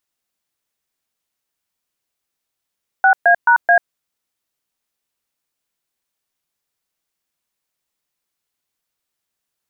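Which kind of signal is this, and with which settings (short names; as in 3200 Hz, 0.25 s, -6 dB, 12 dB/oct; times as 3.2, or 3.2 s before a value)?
DTMF "6A#A", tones 91 ms, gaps 0.125 s, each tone -10.5 dBFS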